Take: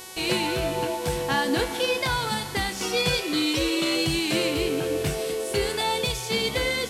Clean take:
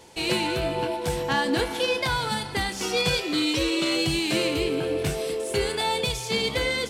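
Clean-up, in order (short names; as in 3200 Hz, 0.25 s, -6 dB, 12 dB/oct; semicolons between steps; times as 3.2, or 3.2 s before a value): de-hum 372.8 Hz, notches 35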